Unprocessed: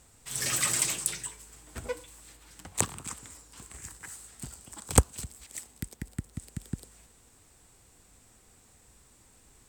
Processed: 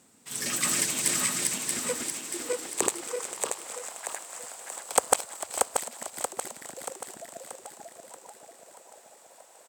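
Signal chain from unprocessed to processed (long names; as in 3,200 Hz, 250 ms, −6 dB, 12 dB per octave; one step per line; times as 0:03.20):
feedback delay that plays each chunk backwards 316 ms, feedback 71%, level 0 dB
echo with shifted repeats 447 ms, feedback 63%, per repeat −150 Hz, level −14 dB
high-pass filter sweep 220 Hz → 630 Hz, 0:01.80–0:03.99
level −1 dB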